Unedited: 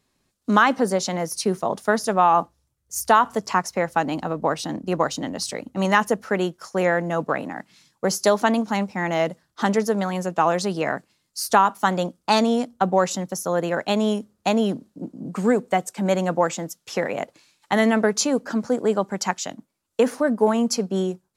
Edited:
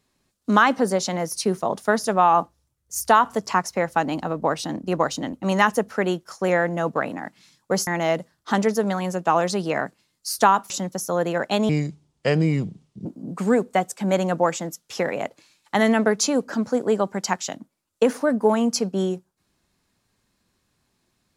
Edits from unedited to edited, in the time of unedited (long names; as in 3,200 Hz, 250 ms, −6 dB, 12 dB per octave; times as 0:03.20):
0:05.33–0:05.66: remove
0:08.20–0:08.98: remove
0:11.81–0:13.07: remove
0:14.06–0:15.03: play speed 71%